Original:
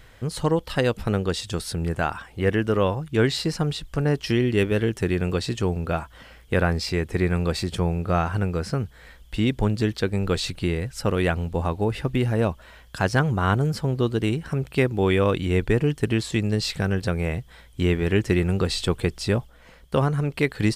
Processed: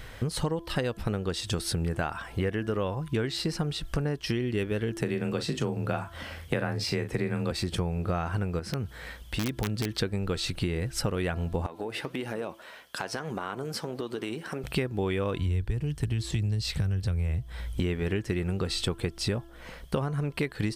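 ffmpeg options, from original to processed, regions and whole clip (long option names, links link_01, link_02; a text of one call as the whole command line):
ffmpeg -i in.wav -filter_complex "[0:a]asettb=1/sr,asplit=3[link_01][link_02][link_03];[link_01]atrim=end=5.014[link_04];[link_02]atrim=start=5.01:end=7.51,asetpts=PTS-STARTPTS,afade=type=in:duration=0.004:curve=qsin,afade=type=out:start_time=2.496:duration=0.004:curve=qsin,afreqshift=24,asplit=2[link_05][link_06];[link_06]adelay=39,volume=-9.5dB[link_07];[link_05][link_07]amix=inputs=2:normalize=0,atrim=end_sample=110250[link_08];[link_03]atrim=start=7.506[link_09];[link_04][link_08]acrossfade=duration=0.004:curve1=hsin:curve2=qsin[link_10];[link_10][link_09]acrossfade=duration=0.004:curve1=qsin:curve2=hsin,asettb=1/sr,asplit=3[link_11][link_12][link_13];[link_11]atrim=end=8.594[link_14];[link_12]atrim=start=8.59:end=9.99,asetpts=PTS-STARTPTS,afade=type=in:duration=0.004:curve=qsin,afade=type=out:start_time=1.396:duration=0.004:curve=qsin,highpass=49,acompressor=threshold=-36dB:ratio=2:attack=3.2:release=140:knee=1:detection=peak,aeval=exprs='(mod(14.1*val(0)+1,2)-1)/14.1':channel_layout=same[link_15];[link_13]atrim=start=9.986[link_16];[link_14][link_15]acrossfade=duration=0.004:curve1=hsin:curve2=qsin[link_17];[link_17][link_16]acrossfade=duration=0.004:curve1=qsin:curve2=hsin,asettb=1/sr,asplit=3[link_18][link_19][link_20];[link_18]atrim=end=11.664[link_21];[link_19]atrim=start=11.66:end=14.64,asetpts=PTS-STARTPTS,afade=type=in:duration=0.004:curve=qsin,afade=type=out:start_time=2.976:duration=0.004:curve=qsin,highpass=290,acompressor=threshold=-30dB:ratio=6:attack=3.2:release=140:knee=1:detection=peak,flanger=delay=3.3:depth=5.8:regen=86:speed=1.7:shape=sinusoidal[link_22];[link_20]atrim=start=14.636[link_23];[link_21][link_22]acrossfade=duration=0.004:curve1=hsin:curve2=qsin[link_24];[link_24][link_23]acrossfade=duration=0.004:curve1=qsin:curve2=hsin,asettb=1/sr,asplit=3[link_25][link_26][link_27];[link_25]atrim=end=15.384[link_28];[link_26]atrim=start=15.38:end=17.8,asetpts=PTS-STARTPTS,afade=type=in:duration=0.004:curve=qsin,afade=type=out:start_time=2.416:duration=0.004:curve=qsin,equalizer=frequency=66:width=0.63:gain=12.5,acrossover=split=120|3000[link_29][link_30][link_31];[link_30]acompressor=threshold=-32dB:ratio=2:attack=3.2:release=140:knee=2.83:detection=peak[link_32];[link_29][link_32][link_31]amix=inputs=3:normalize=0[link_33];[link_27]atrim=start=17.796[link_34];[link_28][link_33]acrossfade=duration=0.004:curve1=hsin:curve2=qsin[link_35];[link_35][link_34]acrossfade=duration=0.004:curve1=qsin:curve2=hsin,bandreject=frequency=7100:width=17,bandreject=frequency=337.4:width_type=h:width=4,bandreject=frequency=674.8:width_type=h:width=4,bandreject=frequency=1012.2:width_type=h:width=4,bandreject=frequency=1349.6:width_type=h:width=4,bandreject=frequency=1687:width_type=h:width=4,acompressor=threshold=-32dB:ratio=8,volume=6dB" out.wav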